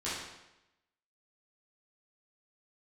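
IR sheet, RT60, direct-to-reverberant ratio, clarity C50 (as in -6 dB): 0.90 s, -11.5 dB, 0.0 dB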